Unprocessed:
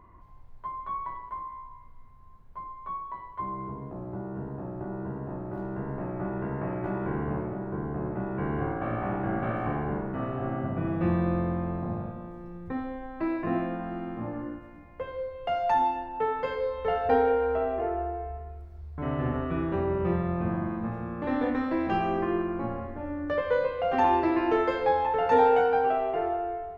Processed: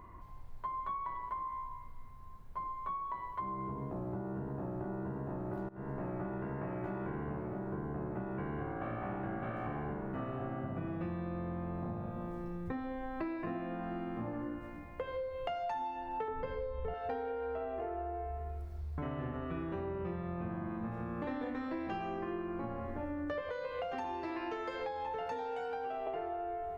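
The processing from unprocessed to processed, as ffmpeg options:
ffmpeg -i in.wav -filter_complex "[0:a]asettb=1/sr,asplit=3[link_01][link_02][link_03];[link_01]atrim=end=16.284[link_04];[link_02]atrim=start=16.28:end=16.94,asetpts=PTS-STARTPTS,afade=type=in:duration=0.004:curve=qsin,afade=type=out:start_time=0.656:duration=0.004:curve=qsin,aemphasis=mode=reproduction:type=riaa[link_05];[link_03]atrim=start=16.936[link_06];[link_04][link_05]acrossfade=duration=0.004:curve1=hsin:curve2=qsin[link_07];[link_07][link_06]acrossfade=duration=0.004:curve1=qsin:curve2=hsin,asettb=1/sr,asplit=3[link_08][link_09][link_10];[link_08]atrim=end=23.494[link_11];[link_09]atrim=start=23.49:end=26.07,asetpts=PTS-STARTPTS,afade=type=in:duration=0.004:curve=qsin,afade=type=out:start_time=2.576:duration=0.004:curve=qsin,acrossover=split=680|4100[link_12][link_13][link_14];[link_12]acompressor=threshold=-36dB:ratio=4[link_15];[link_13]acompressor=threshold=-37dB:ratio=4[link_16];[link_14]acompressor=threshold=-59dB:ratio=4[link_17];[link_15][link_16][link_17]amix=inputs=3:normalize=0[link_18];[link_10]atrim=start=26.066[link_19];[link_11][link_18]acrossfade=duration=0.004:curve1=hsin:curve2=qsin[link_20];[link_20][link_19]acrossfade=duration=0.004:curve1=qsin:curve2=hsin,asplit=2[link_21][link_22];[link_21]atrim=end=5.69,asetpts=PTS-STARTPTS,afade=type=out:start_time=5.686:duration=0.004:curve=hsin:silence=0.0668344[link_23];[link_22]atrim=start=5.69,asetpts=PTS-STARTPTS,afade=type=in:duration=0.48:silence=0.0668344[link_24];[link_23][link_24]concat=n=2:v=0:a=1,highshelf=frequency=3900:gain=6.5,acompressor=threshold=-37dB:ratio=10,volume=1.5dB" out.wav

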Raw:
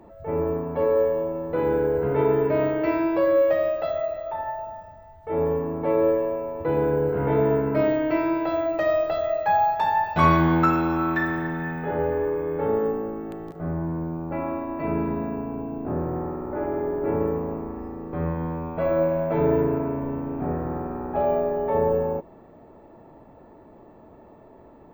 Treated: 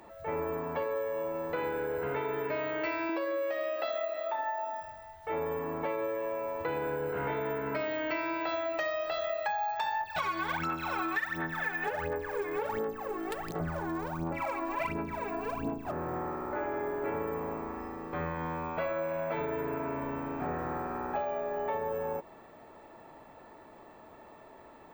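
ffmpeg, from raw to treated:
ffmpeg -i in.wav -filter_complex "[0:a]asettb=1/sr,asplit=3[link_01][link_02][link_03];[link_01]atrim=end=3.094[link_04];[link_02]atrim=start=3.09:end=4.81,asetpts=PTS-STARTPTS,afade=type=in:duration=0.004:curve=qsin,afade=type=out:start_time=1.716:duration=0.004:curve=qsin,lowshelf=frequency=180:width_type=q:width=3:gain=-13[link_05];[link_03]atrim=start=4.806[link_06];[link_04][link_05]acrossfade=duration=0.004:curve1=hsin:curve2=qsin[link_07];[link_07][link_06]acrossfade=duration=0.004:curve1=qsin:curve2=hsin,asplit=3[link_08][link_09][link_10];[link_08]afade=type=out:start_time=10:duration=0.02[link_11];[link_09]aphaser=in_gain=1:out_gain=1:delay=2.9:decay=0.78:speed=1.4:type=sinusoidal,afade=type=in:start_time=10:duration=0.02,afade=type=out:start_time=15.9:duration=0.02[link_12];[link_10]afade=type=in:start_time=15.9:duration=0.02[link_13];[link_11][link_12][link_13]amix=inputs=3:normalize=0,alimiter=limit=-14.5dB:level=0:latency=1:release=449,tiltshelf=frequency=860:gain=-10,acompressor=threshold=-30dB:ratio=6" out.wav

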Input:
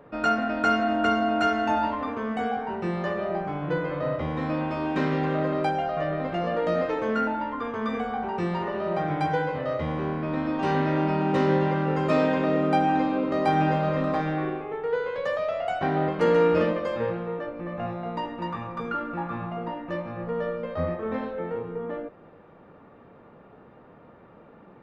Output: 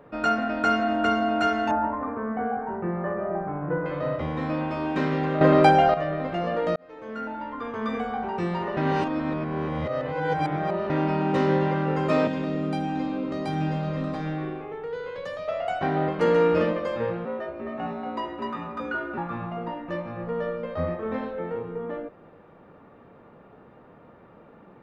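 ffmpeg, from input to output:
ffmpeg -i in.wav -filter_complex "[0:a]asettb=1/sr,asplit=3[link_01][link_02][link_03];[link_01]atrim=end=1.714[link_04];[link_02]atrim=start=1.71:end=3.86,asetpts=PTS-STARTPTS,afade=type=in:duration=0.004:curve=qsin,afade=type=out:start_time=2.146:duration=0.004:curve=qsin,lowpass=frequency=1700:width=0.5412,lowpass=frequency=1700:width=1.3066[link_05];[link_03]atrim=start=3.856[link_06];[link_04][link_05]acrossfade=duration=0.004:curve1=hsin:curve2=qsin[link_07];[link_07][link_06]acrossfade=duration=0.004:curve1=qsin:curve2=hsin,asettb=1/sr,asplit=3[link_08][link_09][link_10];[link_08]atrim=end=12.274[link_11];[link_09]atrim=start=12.27:end=15.48,asetpts=PTS-STARTPTS,afade=type=in:duration=0.004:curve=qsin,afade=type=out:start_time=3.206:duration=0.004:curve=qsin,acrossover=split=300|3000[link_12][link_13][link_14];[link_13]acompressor=threshold=-36dB:ratio=2.5:attack=3.2:release=140:knee=2.83:detection=peak[link_15];[link_12][link_15][link_14]amix=inputs=3:normalize=0[link_16];[link_10]atrim=start=15.476[link_17];[link_11][link_16]acrossfade=duration=0.004:curve1=hsin:curve2=qsin[link_18];[link_18][link_17]acrossfade=duration=0.004:curve1=qsin:curve2=hsin,asettb=1/sr,asplit=3[link_19][link_20][link_21];[link_19]atrim=end=17.254[link_22];[link_20]atrim=start=17.25:end=19.18,asetpts=PTS-STARTPTS,afade=type=in:duration=0.004:curve=qsin,afade=type=out:start_time=1.926:duration=0.004:curve=qsin,afreqshift=55[link_23];[link_21]atrim=start=19.176[link_24];[link_22][link_23]acrossfade=duration=0.004:curve1=hsin:curve2=qsin[link_25];[link_25][link_24]acrossfade=duration=0.004:curve1=qsin:curve2=hsin,asplit=6[link_26][link_27][link_28][link_29][link_30][link_31];[link_26]atrim=end=5.412[link_32];[link_27]atrim=start=5.408:end=5.942,asetpts=PTS-STARTPTS,volume=9.5dB[link_33];[link_28]atrim=start=5.938:end=6.76,asetpts=PTS-STARTPTS,afade=type=out:start_time=0.818:duration=0.004:curve=hsin[link_34];[link_29]atrim=start=6.76:end=8.772,asetpts=PTS-STARTPTS,afade=type=in:duration=1.13[link_35];[link_30]atrim=start=8.768:end=10.902,asetpts=PTS-STARTPTS,areverse[link_36];[link_31]atrim=start=10.898[link_37];[link_32][link_33]acrossfade=duration=0.004:curve1=hsin:curve2=hsin[link_38];[link_34][link_35]concat=n=2:v=0:a=1[link_39];[link_38][link_39]acrossfade=duration=0.004:curve1=hsin:curve2=hsin[link_40];[link_40][link_36]acrossfade=duration=0.004:curve1=hsin:curve2=hsin[link_41];[link_41][link_37]acrossfade=duration=0.004:curve1=hsin:curve2=hsin" out.wav

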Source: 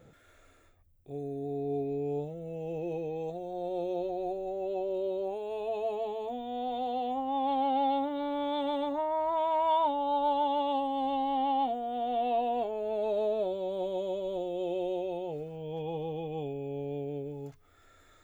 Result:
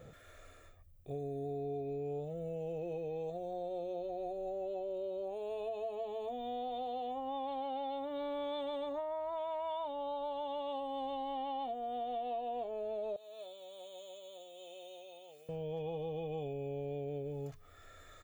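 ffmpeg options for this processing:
ffmpeg -i in.wav -filter_complex "[0:a]asettb=1/sr,asplit=3[link_01][link_02][link_03];[link_01]atrim=end=13.164[link_04];[link_02]atrim=start=13.16:end=15.49,asetpts=PTS-STARTPTS,afade=type=in:duration=0.004:curve=qsin,afade=type=out:start_time=2.326:duration=0.004:curve=qsin,aderivative[link_05];[link_03]atrim=start=15.486[link_06];[link_04][link_05]acrossfade=duration=0.004:curve1=hsin:curve2=qsin[link_07];[link_07][link_06]acrossfade=duration=0.004:curve1=qsin:curve2=hsin,aecho=1:1:1.7:0.38,acompressor=threshold=-40dB:ratio=6,volume=2.5dB" out.wav

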